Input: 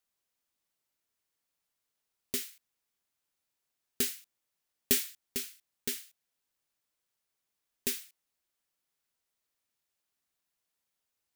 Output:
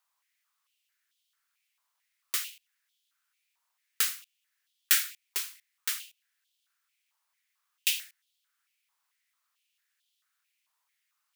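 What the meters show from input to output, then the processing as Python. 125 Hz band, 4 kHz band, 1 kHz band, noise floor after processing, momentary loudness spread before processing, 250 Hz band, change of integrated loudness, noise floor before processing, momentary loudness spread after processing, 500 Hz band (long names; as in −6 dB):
below −30 dB, +6.0 dB, +11.5 dB, −80 dBFS, 13 LU, below −20 dB, +4.0 dB, −85 dBFS, 16 LU, −15.0 dB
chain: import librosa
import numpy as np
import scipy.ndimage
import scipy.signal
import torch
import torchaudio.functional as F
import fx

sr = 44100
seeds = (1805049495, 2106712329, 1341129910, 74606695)

y = fx.filter_held_highpass(x, sr, hz=4.5, low_hz=1000.0, high_hz=3300.0)
y = y * librosa.db_to_amplitude(3.5)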